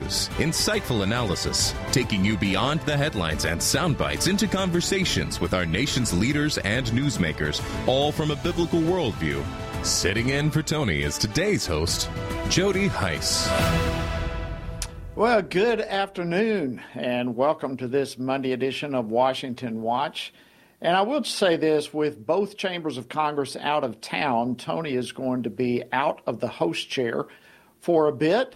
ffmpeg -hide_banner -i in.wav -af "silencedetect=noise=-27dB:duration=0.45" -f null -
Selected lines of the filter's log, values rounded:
silence_start: 20.26
silence_end: 20.82 | silence_duration: 0.56
silence_start: 27.22
silence_end: 27.88 | silence_duration: 0.66